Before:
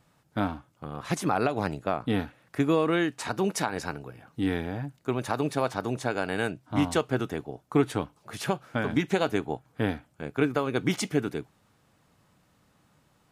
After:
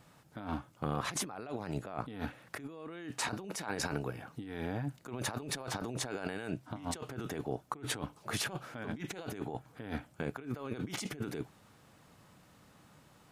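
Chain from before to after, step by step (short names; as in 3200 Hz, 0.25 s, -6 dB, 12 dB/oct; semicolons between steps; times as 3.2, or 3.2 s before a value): low shelf 74 Hz -4 dB; negative-ratio compressor -37 dBFS, ratio -1; gain -3 dB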